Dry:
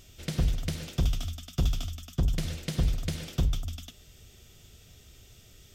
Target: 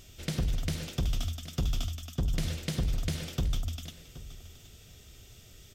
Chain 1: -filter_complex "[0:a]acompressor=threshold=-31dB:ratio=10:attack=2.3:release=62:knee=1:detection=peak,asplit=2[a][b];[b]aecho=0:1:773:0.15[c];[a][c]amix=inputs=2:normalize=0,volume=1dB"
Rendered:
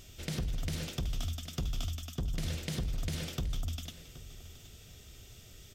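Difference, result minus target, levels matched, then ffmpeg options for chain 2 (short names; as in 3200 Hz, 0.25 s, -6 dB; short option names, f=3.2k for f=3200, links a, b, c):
compressor: peak gain reduction +5.5 dB
-filter_complex "[0:a]acompressor=threshold=-25dB:ratio=10:attack=2.3:release=62:knee=1:detection=peak,asplit=2[a][b];[b]aecho=0:1:773:0.15[c];[a][c]amix=inputs=2:normalize=0,volume=1dB"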